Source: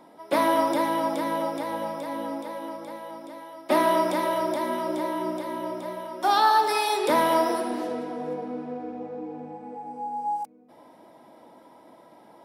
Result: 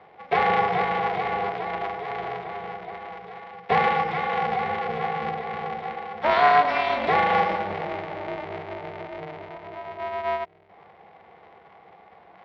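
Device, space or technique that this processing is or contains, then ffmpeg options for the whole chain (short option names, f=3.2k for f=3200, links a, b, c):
ring modulator pedal into a guitar cabinet: -filter_complex "[0:a]asettb=1/sr,asplit=3[a][b][c];[a]atrim=end=3.894[d];[b]atrim=start=3.89:end=4.32,asetpts=PTS-STARTPTS,afade=t=in:d=0.004:c=qsin,afade=t=out:st=0.426:d=0.004:c=qsin,equalizer=f=580:w=2.5:g=-6.5[e];[c]atrim=start=4.316[f];[d][e]acrossfade=d=0.004:c1=hsin:c2=qsin[g];[g][f]acrossfade=d=0.004:c1=qsin:c2=hsin,aeval=exprs='val(0)*sgn(sin(2*PI*150*n/s))':c=same,highpass=88,equalizer=f=120:t=q:w=4:g=-9,equalizer=f=270:t=q:w=4:g=-6,equalizer=f=740:t=q:w=4:g=8,equalizer=f=2.1k:t=q:w=4:g=9,lowpass=f=3.6k:w=0.5412,lowpass=f=3.6k:w=1.3066,volume=-2dB"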